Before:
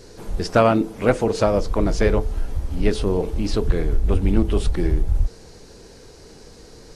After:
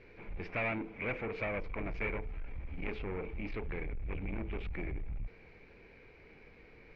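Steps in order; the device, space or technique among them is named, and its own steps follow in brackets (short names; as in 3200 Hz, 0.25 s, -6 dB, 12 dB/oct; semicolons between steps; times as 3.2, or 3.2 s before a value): overdriven synthesiser ladder filter (soft clip -20.5 dBFS, distortion -8 dB; ladder low-pass 2400 Hz, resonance 85%); gain -1 dB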